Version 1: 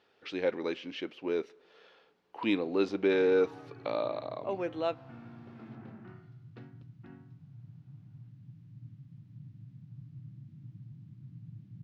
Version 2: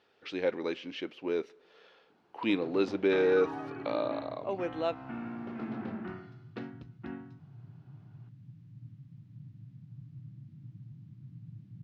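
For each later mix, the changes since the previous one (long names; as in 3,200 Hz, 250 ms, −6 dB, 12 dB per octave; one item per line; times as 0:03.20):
first sound +11.0 dB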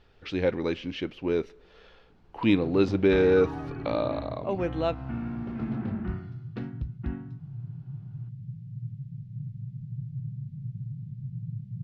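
speech +3.5 dB
second sound: add phaser with its sweep stopped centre 300 Hz, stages 6
master: remove high-pass filter 300 Hz 12 dB per octave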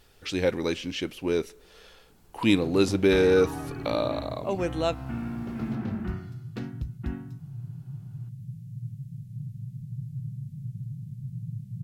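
master: remove high-frequency loss of the air 240 metres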